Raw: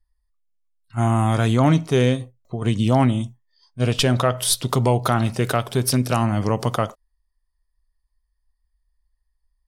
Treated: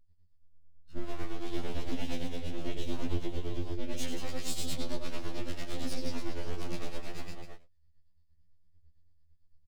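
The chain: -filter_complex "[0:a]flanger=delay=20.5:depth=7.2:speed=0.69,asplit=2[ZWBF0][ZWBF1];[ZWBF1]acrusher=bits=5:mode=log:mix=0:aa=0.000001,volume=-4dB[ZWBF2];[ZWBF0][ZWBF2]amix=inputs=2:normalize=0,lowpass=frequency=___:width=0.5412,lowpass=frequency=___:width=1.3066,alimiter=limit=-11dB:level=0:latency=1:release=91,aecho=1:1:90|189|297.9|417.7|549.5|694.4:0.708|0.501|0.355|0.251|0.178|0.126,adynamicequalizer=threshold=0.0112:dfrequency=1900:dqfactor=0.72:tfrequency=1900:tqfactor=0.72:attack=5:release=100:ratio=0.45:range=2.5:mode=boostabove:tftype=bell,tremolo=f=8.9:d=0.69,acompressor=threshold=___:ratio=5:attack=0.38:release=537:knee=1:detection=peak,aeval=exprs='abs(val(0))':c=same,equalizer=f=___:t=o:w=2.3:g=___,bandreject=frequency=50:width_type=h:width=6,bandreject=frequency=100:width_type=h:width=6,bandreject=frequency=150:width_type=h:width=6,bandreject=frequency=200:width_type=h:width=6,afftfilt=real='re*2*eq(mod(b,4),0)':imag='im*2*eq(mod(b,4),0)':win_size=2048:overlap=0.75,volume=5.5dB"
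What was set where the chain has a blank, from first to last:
4700, 4700, -25dB, 1300, -14.5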